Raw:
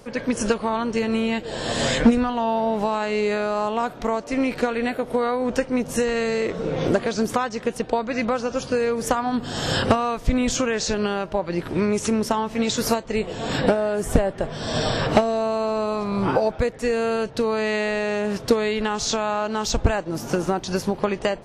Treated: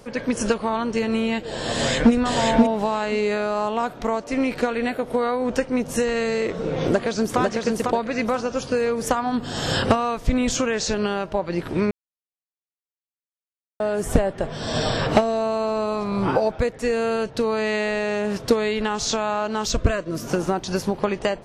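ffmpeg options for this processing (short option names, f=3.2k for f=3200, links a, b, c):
-filter_complex "[0:a]asplit=2[a][b];[b]afade=t=in:st=1.72:d=0.01,afade=t=out:st=2.13:d=0.01,aecho=0:1:530|1060:0.794328|0.0794328[c];[a][c]amix=inputs=2:normalize=0,asplit=2[d][e];[e]afade=t=in:st=6.86:d=0.01,afade=t=out:st=7.4:d=0.01,aecho=0:1:500|1000|1500|2000:0.707946|0.212384|0.0637151|0.0191145[f];[d][f]amix=inputs=2:normalize=0,asettb=1/sr,asplit=3[g][h][i];[g]atrim=end=19.664[j];[h]atrim=start=19.66:end=20.28,asetpts=PTS-STARTPTS,afade=t=in:d=0.004:c=qsin,afade=t=out:st=0.616:d=0.004:c=qsin,asuperstop=centerf=820:order=8:qfactor=3.5[k];[i]atrim=start=20.276[l];[j][k]acrossfade=d=0.004:c1=hsin:c2=qsin[m];[m][l]acrossfade=d=0.004:c1=qsin:c2=hsin,asplit=3[n][o][p];[n]atrim=end=11.91,asetpts=PTS-STARTPTS,afade=t=out:st=11.906:d=0.004:c=hsin[q];[o]atrim=start=11.91:end=13.8,asetpts=PTS-STARTPTS,volume=0[r];[p]atrim=start=13.8,asetpts=PTS-STARTPTS,afade=t=in:d=0.004:c=hsin[s];[q][r][s]concat=n=3:v=0:a=1"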